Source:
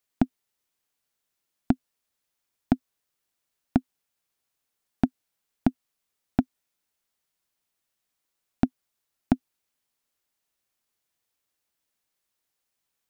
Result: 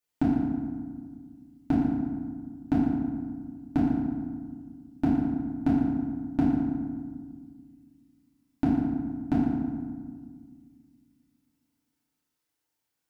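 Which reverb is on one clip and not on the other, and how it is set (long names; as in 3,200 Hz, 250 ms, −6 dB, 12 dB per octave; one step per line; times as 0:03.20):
feedback delay network reverb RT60 1.7 s, low-frequency decay 1.5×, high-frequency decay 0.55×, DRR −9 dB
level −9.5 dB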